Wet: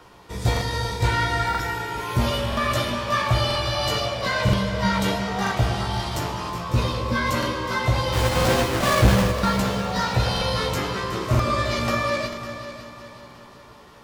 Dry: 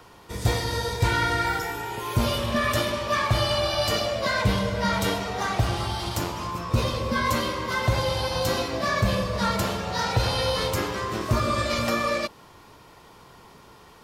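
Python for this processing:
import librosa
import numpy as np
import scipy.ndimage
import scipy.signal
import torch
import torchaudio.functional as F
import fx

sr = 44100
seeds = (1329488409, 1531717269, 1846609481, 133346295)

y = fx.halfwave_hold(x, sr, at=(8.12, 9.3), fade=0.02)
y = fx.high_shelf(y, sr, hz=8500.0, db=-6.0)
y = fx.doubler(y, sr, ms=16.0, db=-5)
y = fx.echo_heads(y, sr, ms=184, heads='second and third', feedback_pct=46, wet_db=-13.0)
y = fx.buffer_crackle(y, sr, first_s=0.52, period_s=0.98, block=2048, kind='repeat')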